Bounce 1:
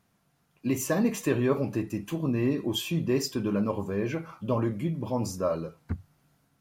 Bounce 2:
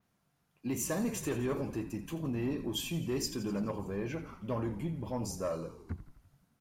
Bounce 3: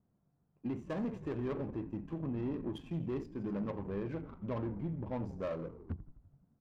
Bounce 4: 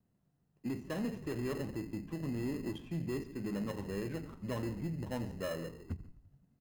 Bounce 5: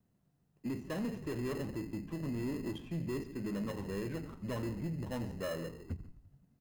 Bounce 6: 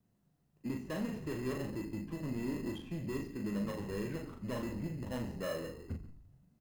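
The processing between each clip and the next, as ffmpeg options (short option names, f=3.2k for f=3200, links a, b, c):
-filter_complex "[0:a]asplit=8[a][b][c][d][e][f][g][h];[b]adelay=84,afreqshift=-45,volume=-14dB[i];[c]adelay=168,afreqshift=-90,volume=-18.3dB[j];[d]adelay=252,afreqshift=-135,volume=-22.6dB[k];[e]adelay=336,afreqshift=-180,volume=-26.9dB[l];[f]adelay=420,afreqshift=-225,volume=-31.2dB[m];[g]adelay=504,afreqshift=-270,volume=-35.5dB[n];[h]adelay=588,afreqshift=-315,volume=-39.8dB[o];[a][i][j][k][l][m][n][o]amix=inputs=8:normalize=0,adynamicequalizer=threshold=0.00355:dfrequency=8900:dqfactor=0.76:tfrequency=8900:tqfactor=0.76:attack=5:release=100:ratio=0.375:range=2.5:mode=boostabove:tftype=bell,acrossover=split=4400[p][q];[p]asoftclip=type=tanh:threshold=-20dB[r];[r][q]amix=inputs=2:normalize=0,volume=-6dB"
-af "alimiter=level_in=8dB:limit=-24dB:level=0:latency=1:release=451,volume=-8dB,adynamicsmooth=sensitivity=7.5:basefreq=640,volume=2.5dB"
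-filter_complex "[0:a]asplit=2[a][b];[b]adelay=139.9,volume=-18dB,highshelf=f=4k:g=-3.15[c];[a][c]amix=inputs=2:normalize=0,acrossover=split=300|720[d][e][f];[e]acrusher=samples=19:mix=1:aa=0.000001[g];[d][g][f]amix=inputs=3:normalize=0"
-af "asoftclip=type=tanh:threshold=-31dB,volume=1.5dB"
-filter_complex "[0:a]asplit=2[a][b];[b]adelay=39,volume=-4.5dB[c];[a][c]amix=inputs=2:normalize=0,volume=-1dB"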